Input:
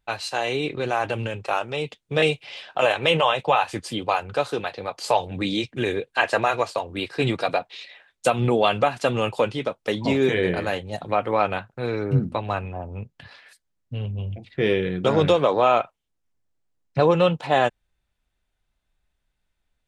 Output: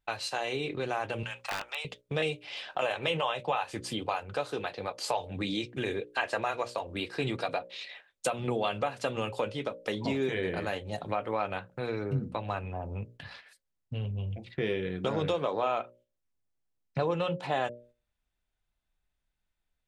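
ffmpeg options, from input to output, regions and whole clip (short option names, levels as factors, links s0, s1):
-filter_complex "[0:a]asettb=1/sr,asplit=3[s0][s1][s2];[s0]atrim=end=1.234[s3];[s1]atrim=start=1.23:end=1.85,asetpts=PTS-STARTPTS,afade=t=in:d=0.004:c=qsin,afade=t=out:st=0.616:d=0.004:c=qsin,highpass=f=840:w=0.5412,highpass=f=840:w=1.3066,aeval=exprs='(mod(8.91*val(0)+1,2)-1)/8.91':c=same,acrossover=split=4500[s4][s5];[s5]acompressor=threshold=0.0112:ratio=4:attack=1:release=60[s6];[s4][s6]amix=inputs=2:normalize=0[s7];[s2]atrim=start=1.846[s8];[s3][s7]acrossfade=d=0.004:c1=hsin:c2=qsin[s9];[s9][s8]acrossfade=d=0.004:c1=qsin:c2=hsin,bandreject=f=60:t=h:w=6,bandreject=f=120:t=h:w=6,bandreject=f=180:t=h:w=6,bandreject=f=240:t=h:w=6,bandreject=f=300:t=h:w=6,bandreject=f=360:t=h:w=6,bandreject=f=420:t=h:w=6,bandreject=f=480:t=h:w=6,bandreject=f=540:t=h:w=6,bandreject=f=600:t=h:w=6,agate=range=0.447:threshold=0.00398:ratio=16:detection=peak,acompressor=threshold=0.0178:ratio=2"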